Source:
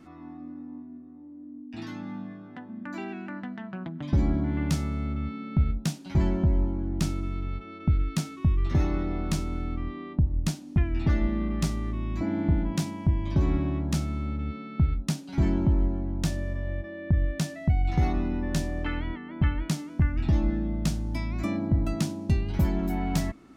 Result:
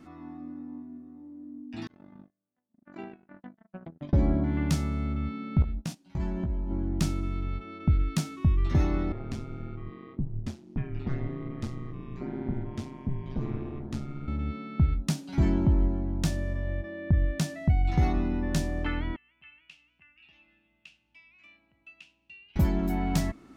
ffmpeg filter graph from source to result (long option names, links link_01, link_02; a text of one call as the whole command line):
ffmpeg -i in.wav -filter_complex "[0:a]asettb=1/sr,asplit=3[link_01][link_02][link_03];[link_01]atrim=end=1.874[link_04];[link_02]atrim=start=1.87:end=4.44,asetpts=PTS-STARTPTS,afade=type=in:duration=0.004:curve=qsin,afade=type=out:start_time=2.566:duration=0.004:curve=qsin,lowpass=frequency=2500:poles=1,equalizer=frequency=550:width_type=o:width=0.51:gain=8,agate=range=-45dB:threshold=-34dB:ratio=16:release=100:detection=peak[link_05];[link_03]atrim=start=4.436[link_06];[link_04][link_05]acrossfade=duration=0.004:curve1=hsin:curve2=qsin[link_07];[link_07][link_06]acrossfade=duration=0.004:curve1=qsin:curve2=hsin,asettb=1/sr,asplit=3[link_08][link_09][link_10];[link_08]atrim=end=5.624[link_11];[link_09]atrim=start=5.62:end=6.71,asetpts=PTS-STARTPTS,afade=type=in:duration=0.004:curve=qsin,afade=type=out:start_time=1.086:duration=0.004:curve=qsin,agate=range=-18dB:threshold=-32dB:ratio=16:release=100:detection=peak,acompressor=threshold=-29dB:ratio=5:attack=3.2:release=140:knee=1:detection=peak,asplit=2[link_12][link_13];[link_13]adelay=17,volume=-5dB[link_14];[link_12][link_14]amix=inputs=2:normalize=0,atrim=end_sample=48069[link_15];[link_10]atrim=start=6.706[link_16];[link_11][link_15]acrossfade=duration=0.004:curve1=hsin:curve2=qsin[link_17];[link_17][link_16]acrossfade=duration=0.004:curve1=qsin:curve2=hsin,asettb=1/sr,asplit=3[link_18][link_19][link_20];[link_18]atrim=end=9.124[link_21];[link_19]atrim=start=9.12:end=14.28,asetpts=PTS-STARTPTS,afade=type=in:duration=0.004:curve=qsin,afade=type=out:start_time=5.156:duration=0.004:curve=qsin,lowpass=frequency=2900:poles=1,flanger=delay=5.3:depth=5.3:regen=-65:speed=1.5:shape=triangular,aeval=exprs='val(0)*sin(2*PI*66*n/s)':channel_layout=same[link_22];[link_20]atrim=start=14.276[link_23];[link_21][link_22]acrossfade=duration=0.004:curve1=hsin:curve2=qsin[link_24];[link_24][link_23]acrossfade=duration=0.004:curve1=qsin:curve2=hsin,asettb=1/sr,asplit=3[link_25][link_26][link_27];[link_25]atrim=end=19.164[link_28];[link_26]atrim=start=19.16:end=22.56,asetpts=PTS-STARTPTS,afade=type=in:duration=0.004:curve=qsin,afade=type=out:start_time=3.396:duration=0.004:curve=qsin,bandpass=frequency=2700:width_type=q:width=13,aeval=exprs='val(0)+0.000112*(sin(2*PI*60*n/s)+sin(2*PI*2*60*n/s)/2+sin(2*PI*3*60*n/s)/3+sin(2*PI*4*60*n/s)/4+sin(2*PI*5*60*n/s)/5)':channel_layout=same[link_29];[link_27]atrim=start=22.556[link_30];[link_28][link_29]acrossfade=duration=0.004:curve1=hsin:curve2=qsin[link_31];[link_31][link_30]acrossfade=duration=0.004:curve1=qsin:curve2=hsin" out.wav